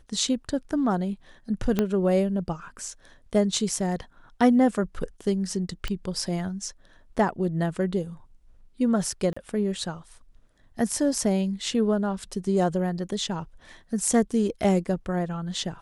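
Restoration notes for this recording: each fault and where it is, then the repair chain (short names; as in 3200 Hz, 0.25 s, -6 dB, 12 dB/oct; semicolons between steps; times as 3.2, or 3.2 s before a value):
1.79 pop -10 dBFS
5.88 pop -17 dBFS
9.33–9.37 gap 35 ms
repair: de-click; interpolate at 9.33, 35 ms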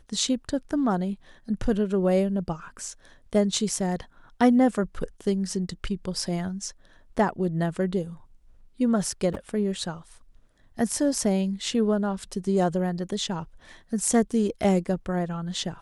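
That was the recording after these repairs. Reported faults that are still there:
1.79 pop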